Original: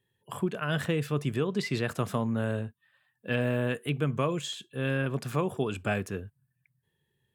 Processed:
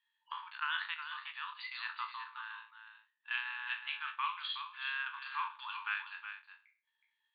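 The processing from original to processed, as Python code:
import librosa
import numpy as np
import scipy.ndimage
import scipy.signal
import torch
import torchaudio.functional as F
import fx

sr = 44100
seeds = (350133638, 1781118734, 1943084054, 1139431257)

y = fx.spec_trails(x, sr, decay_s=0.44)
y = fx.transient(y, sr, attack_db=-2, sustain_db=-8)
y = fx.tremolo_shape(y, sr, shape='saw_up', hz=1.7, depth_pct=60, at=(0.94, 3.31))
y = fx.brickwall_bandpass(y, sr, low_hz=850.0, high_hz=4700.0)
y = y + 10.0 ** (-9.0 / 20.0) * np.pad(y, (int(369 * sr / 1000.0), 0))[:len(y)]
y = F.gain(torch.from_numpy(y), -2.0).numpy()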